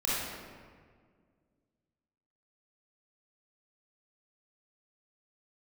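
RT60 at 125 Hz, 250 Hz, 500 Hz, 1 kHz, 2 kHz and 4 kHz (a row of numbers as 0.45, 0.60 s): 2.4, 2.5, 2.0, 1.7, 1.5, 1.1 s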